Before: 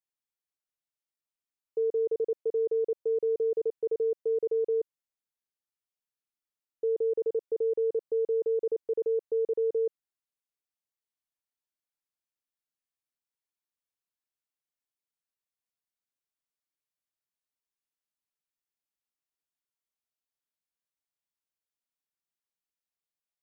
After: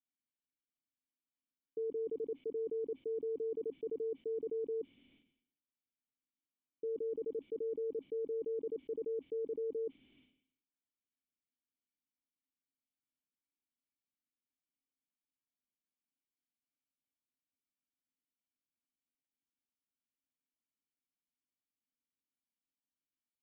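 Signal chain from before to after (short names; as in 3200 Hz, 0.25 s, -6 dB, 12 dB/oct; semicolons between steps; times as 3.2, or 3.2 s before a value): vocal tract filter i; bell 250 Hz +3 dB 0.51 oct; sustainer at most 85 dB/s; gain +7 dB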